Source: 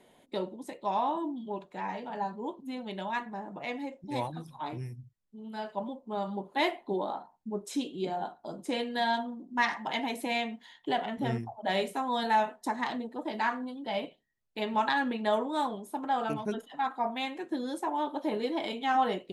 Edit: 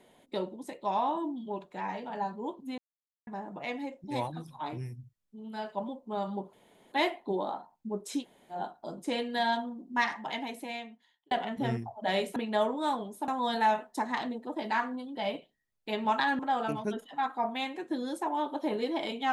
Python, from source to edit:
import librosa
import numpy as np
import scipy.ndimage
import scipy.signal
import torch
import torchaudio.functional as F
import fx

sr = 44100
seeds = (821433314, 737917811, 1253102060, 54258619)

y = fx.edit(x, sr, fx.silence(start_s=2.78, length_s=0.49),
    fx.insert_room_tone(at_s=6.53, length_s=0.39),
    fx.room_tone_fill(start_s=7.82, length_s=0.33, crossfade_s=0.1),
    fx.fade_out_span(start_s=9.5, length_s=1.42),
    fx.move(start_s=15.08, length_s=0.92, to_s=11.97), tone=tone)